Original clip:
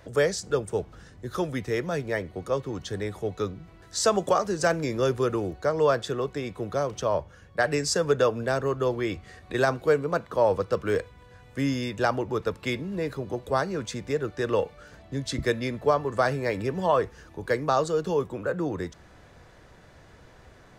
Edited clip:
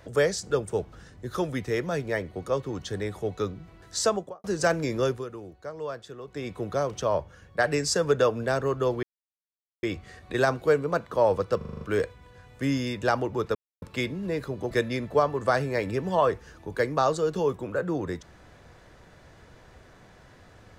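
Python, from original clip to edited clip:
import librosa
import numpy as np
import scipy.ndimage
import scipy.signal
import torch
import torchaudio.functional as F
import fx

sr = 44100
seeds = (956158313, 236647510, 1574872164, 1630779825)

y = fx.studio_fade_out(x, sr, start_s=3.96, length_s=0.48)
y = fx.edit(y, sr, fx.fade_down_up(start_s=4.94, length_s=1.63, db=-12.5, fade_s=0.31, curve='qsin'),
    fx.insert_silence(at_s=9.03, length_s=0.8),
    fx.stutter(start_s=10.77, slice_s=0.04, count=7),
    fx.insert_silence(at_s=12.51, length_s=0.27),
    fx.cut(start_s=13.4, length_s=2.02), tone=tone)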